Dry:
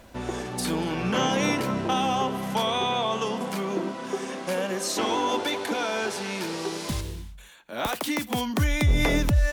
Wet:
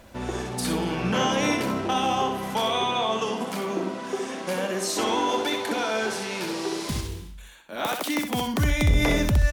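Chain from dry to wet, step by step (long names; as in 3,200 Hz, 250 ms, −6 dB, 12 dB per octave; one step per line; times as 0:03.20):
0:07.76–0:08.24: high-pass filter 170 Hz 12 dB per octave
repeating echo 64 ms, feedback 25%, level −6 dB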